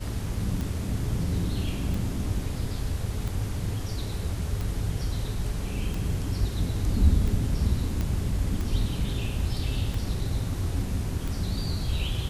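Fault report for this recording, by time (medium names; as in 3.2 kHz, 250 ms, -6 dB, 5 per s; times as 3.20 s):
tick 45 rpm
8.01 s: pop -17 dBFS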